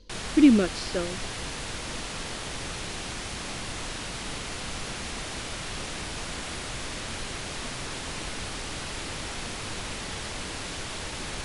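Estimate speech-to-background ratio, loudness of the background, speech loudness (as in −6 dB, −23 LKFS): 11.5 dB, −34.0 LKFS, −22.5 LKFS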